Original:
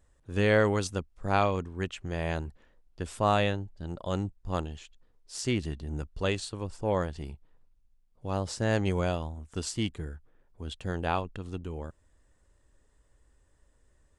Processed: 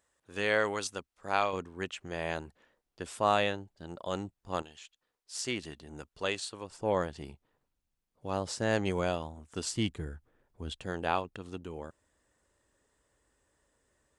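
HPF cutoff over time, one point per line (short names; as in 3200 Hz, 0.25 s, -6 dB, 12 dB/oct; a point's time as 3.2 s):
HPF 6 dB/oct
810 Hz
from 1.53 s 370 Hz
from 4.62 s 1300 Hz
from 5.36 s 610 Hz
from 6.71 s 220 Hz
from 9.7 s 65 Hz
from 10.84 s 270 Hz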